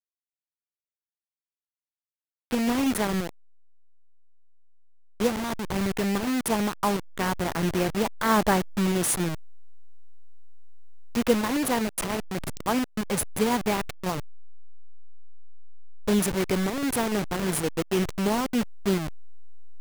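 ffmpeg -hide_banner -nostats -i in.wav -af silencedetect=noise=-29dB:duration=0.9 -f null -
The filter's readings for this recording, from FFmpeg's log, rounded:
silence_start: 0.00
silence_end: 2.51 | silence_duration: 2.51
silence_start: 3.29
silence_end: 5.20 | silence_duration: 1.91
silence_start: 9.35
silence_end: 11.15 | silence_duration: 1.81
silence_start: 14.20
silence_end: 16.08 | silence_duration: 1.88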